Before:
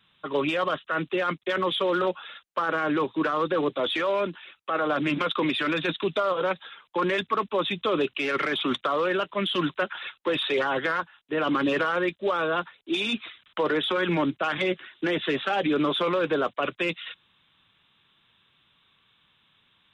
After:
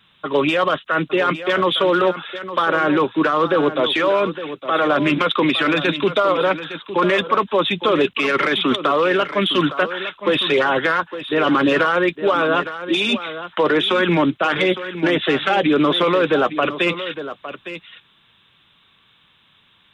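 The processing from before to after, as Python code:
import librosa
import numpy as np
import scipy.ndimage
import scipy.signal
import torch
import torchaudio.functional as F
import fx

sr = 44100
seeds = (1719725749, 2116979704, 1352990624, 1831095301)

y = x + 10.0 ** (-12.0 / 20.0) * np.pad(x, (int(860 * sr / 1000.0), 0))[:len(x)]
y = y * librosa.db_to_amplitude(8.0)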